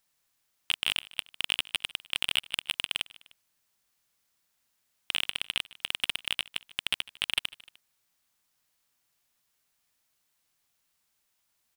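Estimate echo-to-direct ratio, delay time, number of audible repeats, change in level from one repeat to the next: -20.5 dB, 151 ms, 2, -5.0 dB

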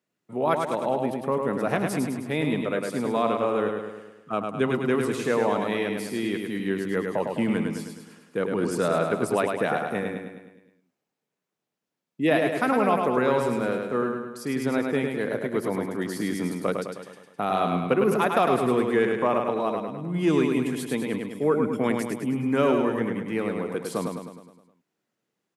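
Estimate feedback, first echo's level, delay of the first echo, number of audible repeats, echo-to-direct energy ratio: 54%, -4.5 dB, 104 ms, 6, -3.0 dB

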